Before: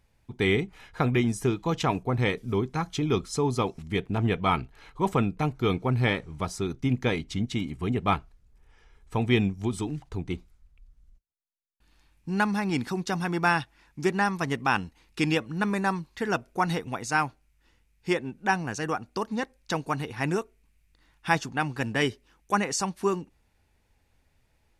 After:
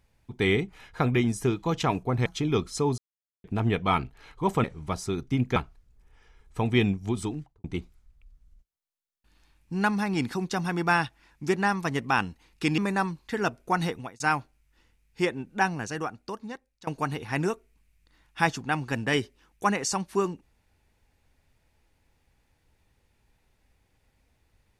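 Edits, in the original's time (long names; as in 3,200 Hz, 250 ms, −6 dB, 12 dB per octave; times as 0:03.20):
0:02.26–0:02.84: remove
0:03.56–0:04.02: silence
0:05.22–0:06.16: remove
0:07.08–0:08.12: remove
0:09.80–0:10.20: fade out and dull
0:15.34–0:15.66: remove
0:16.81–0:17.08: fade out
0:18.55–0:19.75: fade out linear, to −21 dB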